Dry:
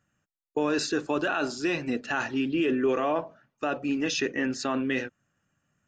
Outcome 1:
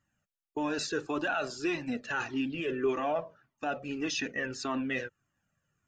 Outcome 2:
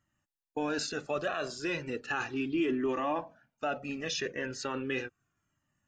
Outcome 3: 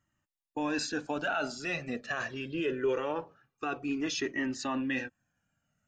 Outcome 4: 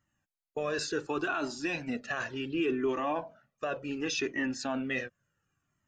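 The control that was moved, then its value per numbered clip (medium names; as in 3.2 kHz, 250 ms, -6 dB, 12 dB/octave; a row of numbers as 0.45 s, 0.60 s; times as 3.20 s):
Shepard-style flanger, rate: 1.7 Hz, 0.36 Hz, 0.23 Hz, 0.69 Hz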